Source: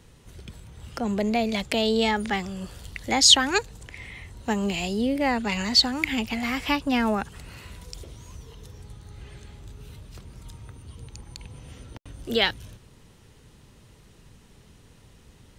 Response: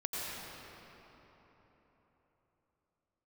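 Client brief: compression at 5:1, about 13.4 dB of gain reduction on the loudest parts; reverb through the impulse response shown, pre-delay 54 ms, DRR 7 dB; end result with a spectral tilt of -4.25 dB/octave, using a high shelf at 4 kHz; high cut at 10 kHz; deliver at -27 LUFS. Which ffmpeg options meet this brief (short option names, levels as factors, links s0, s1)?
-filter_complex "[0:a]lowpass=10000,highshelf=f=4000:g=-3.5,acompressor=threshold=0.0447:ratio=5,asplit=2[s0][s1];[1:a]atrim=start_sample=2205,adelay=54[s2];[s1][s2]afir=irnorm=-1:irlink=0,volume=0.266[s3];[s0][s3]amix=inputs=2:normalize=0,volume=1.78"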